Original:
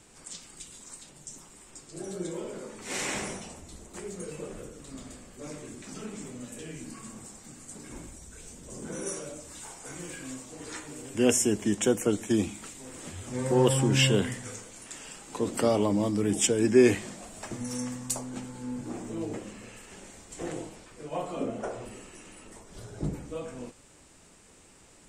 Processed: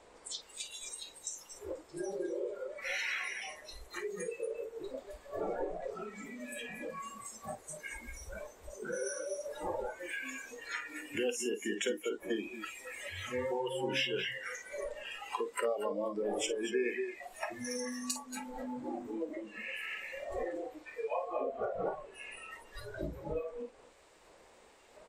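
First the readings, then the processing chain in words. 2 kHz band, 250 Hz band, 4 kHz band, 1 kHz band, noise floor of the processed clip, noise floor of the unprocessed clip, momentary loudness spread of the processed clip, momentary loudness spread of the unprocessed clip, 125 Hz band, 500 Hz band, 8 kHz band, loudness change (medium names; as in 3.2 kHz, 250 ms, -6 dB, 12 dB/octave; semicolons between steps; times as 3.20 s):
-0.5 dB, -12.0 dB, -5.5 dB, -2.5 dB, -60 dBFS, -56 dBFS, 11 LU, 22 LU, -19.5 dB, -6.0 dB, -10.0 dB, -9.0 dB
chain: wind noise 450 Hz -40 dBFS; graphic EQ 125/250/500/1000/2000/4000 Hz -11/-4/+9/+8/+9/+9 dB; compression 5:1, threshold -39 dBFS, peak gain reduction 24.5 dB; multi-tap echo 52/228/241/484 ms -10.5/-9/-8.5/-20 dB; spectral noise reduction 20 dB; trim +4.5 dB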